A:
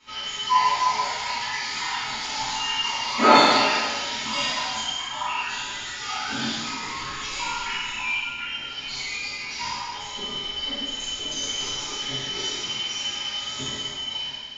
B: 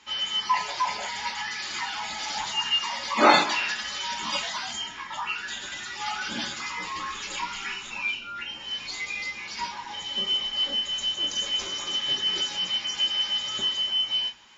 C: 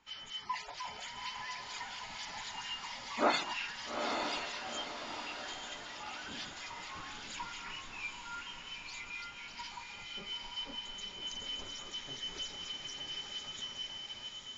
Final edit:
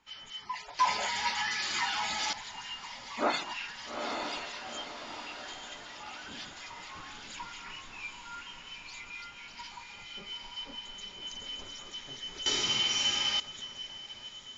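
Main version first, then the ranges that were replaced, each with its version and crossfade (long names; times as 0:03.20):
C
0:00.79–0:02.33: punch in from B
0:12.46–0:13.40: punch in from A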